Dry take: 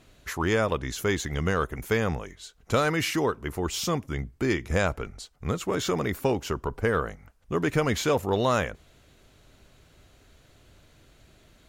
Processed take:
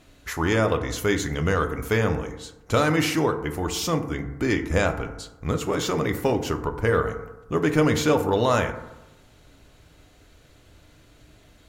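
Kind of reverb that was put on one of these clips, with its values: FDN reverb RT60 1 s, low-frequency decay 1×, high-frequency decay 0.35×, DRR 6 dB; gain +2 dB

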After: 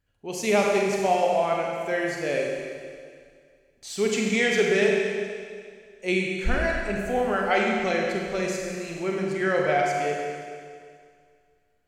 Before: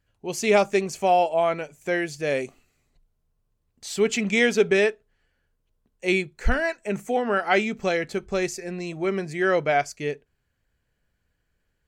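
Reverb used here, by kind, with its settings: Schroeder reverb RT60 2.1 s, combs from 32 ms, DRR -1 dB; gain -4 dB

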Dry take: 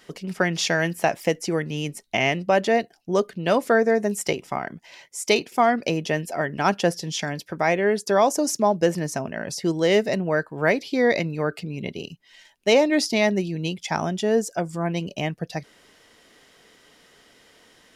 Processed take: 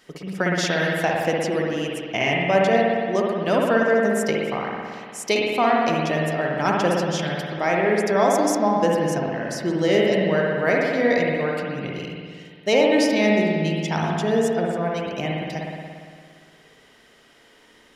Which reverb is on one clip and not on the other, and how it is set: spring tank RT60 2 s, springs 57 ms, chirp 70 ms, DRR -2.5 dB; gain -2.5 dB

